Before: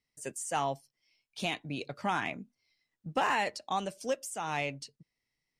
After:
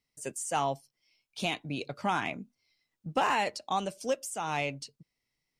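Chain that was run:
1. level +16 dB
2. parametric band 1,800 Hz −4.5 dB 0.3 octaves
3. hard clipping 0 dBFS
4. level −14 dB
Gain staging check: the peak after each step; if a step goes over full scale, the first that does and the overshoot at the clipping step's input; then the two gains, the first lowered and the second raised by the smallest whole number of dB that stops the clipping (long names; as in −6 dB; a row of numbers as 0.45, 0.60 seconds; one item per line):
−3.0, −3.0, −3.0, −17.0 dBFS
no step passes full scale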